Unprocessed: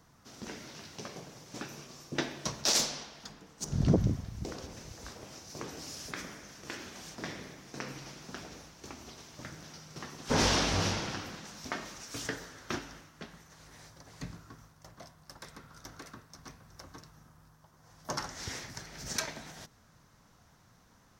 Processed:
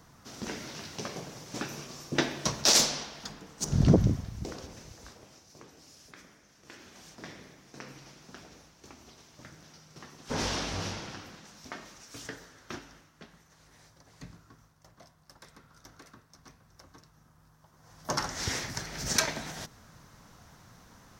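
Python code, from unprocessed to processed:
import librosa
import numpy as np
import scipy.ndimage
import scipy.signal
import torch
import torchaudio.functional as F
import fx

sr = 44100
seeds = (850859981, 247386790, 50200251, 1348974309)

y = fx.gain(x, sr, db=fx.line((3.76, 5.5), (4.92, -2.0), (5.7, -11.5), (6.49, -11.5), (6.99, -5.0), (17.1, -5.0), (18.42, 7.5)))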